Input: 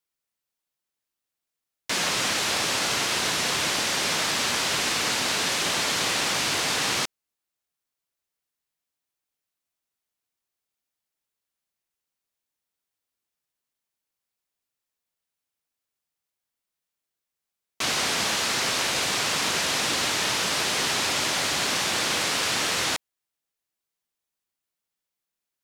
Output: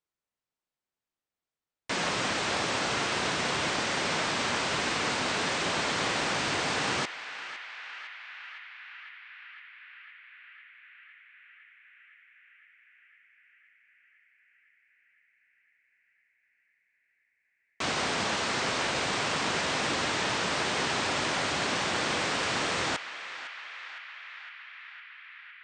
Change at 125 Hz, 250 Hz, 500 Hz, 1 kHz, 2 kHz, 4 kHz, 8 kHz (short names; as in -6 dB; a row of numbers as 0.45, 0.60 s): 0.0, 0.0, -0.5, -1.0, -3.0, -6.5, -10.0 dB